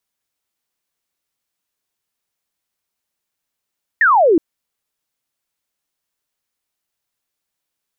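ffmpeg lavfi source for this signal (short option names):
-f lavfi -i "aevalsrc='0.376*clip(t/0.002,0,1)*clip((0.37-t)/0.002,0,1)*sin(2*PI*1900*0.37/log(300/1900)*(exp(log(300/1900)*t/0.37)-1))':d=0.37:s=44100"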